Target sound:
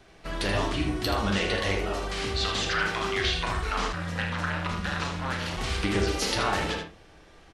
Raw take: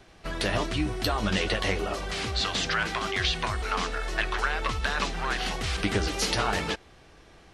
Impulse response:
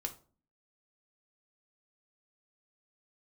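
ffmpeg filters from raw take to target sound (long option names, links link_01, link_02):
-filter_complex "[0:a]aecho=1:1:30|79:0.251|0.447,asplit=2[link_01][link_02];[1:a]atrim=start_sample=2205,lowpass=3700,adelay=41[link_03];[link_02][link_03]afir=irnorm=-1:irlink=0,volume=-3.5dB[link_04];[link_01][link_04]amix=inputs=2:normalize=0,asplit=3[link_05][link_06][link_07];[link_05]afade=type=out:start_time=3.92:duration=0.02[link_08];[link_06]aeval=exprs='val(0)*sin(2*PI*130*n/s)':channel_layout=same,afade=type=in:start_time=3.92:duration=0.02,afade=type=out:start_time=5.56:duration=0.02[link_09];[link_07]afade=type=in:start_time=5.56:duration=0.02[link_10];[link_08][link_09][link_10]amix=inputs=3:normalize=0,volume=-2dB"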